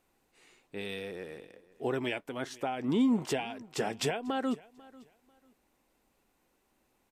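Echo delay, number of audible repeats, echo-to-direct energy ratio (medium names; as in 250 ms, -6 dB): 494 ms, 2, -22.0 dB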